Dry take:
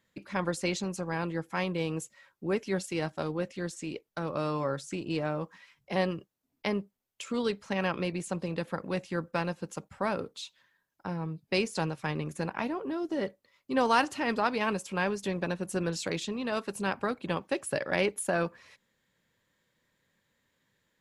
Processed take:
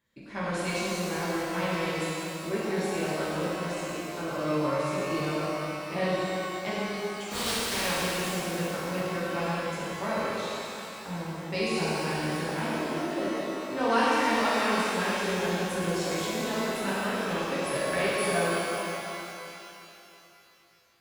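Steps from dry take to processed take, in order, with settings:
0:07.30–0:07.85: compressing power law on the bin magnitudes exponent 0.31
reverb with rising layers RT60 3 s, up +12 semitones, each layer −8 dB, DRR −9.5 dB
level −7.5 dB

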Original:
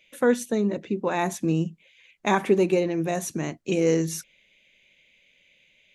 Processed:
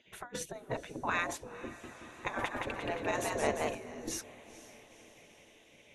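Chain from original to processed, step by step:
spectral tilt −4 dB per octave
compressor whose output falls as the input rises −21 dBFS, ratio −0.5
gate on every frequency bin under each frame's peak −15 dB weak
low-shelf EQ 68 Hz −8 dB
feedback delay with all-pass diffusion 480 ms, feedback 58%, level −16 dB
0:01.66–0:03.75: feedback echo with a swinging delay time 174 ms, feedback 62%, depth 104 cents, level −3 dB

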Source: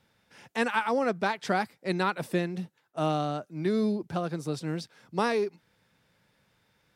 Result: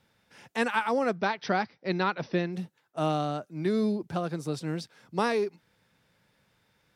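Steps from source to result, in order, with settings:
0:01.15–0:02.53: linear-phase brick-wall low-pass 6,100 Hz

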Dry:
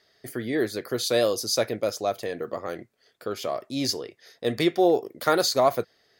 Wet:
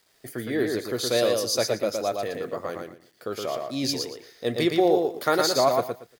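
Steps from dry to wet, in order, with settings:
bit reduction 10 bits
repeating echo 116 ms, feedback 21%, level −4 dB
level −1 dB

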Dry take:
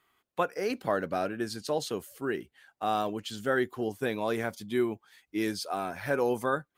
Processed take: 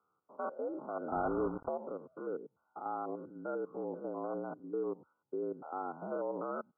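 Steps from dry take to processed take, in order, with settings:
spectrum averaged block by block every 100 ms
brickwall limiter −23.5 dBFS, peak gain reduction 7.5 dB
frequency shifter +72 Hz
0:01.12–0:01.69: log-companded quantiser 2 bits
linear-phase brick-wall low-pass 1,500 Hz
level −4 dB

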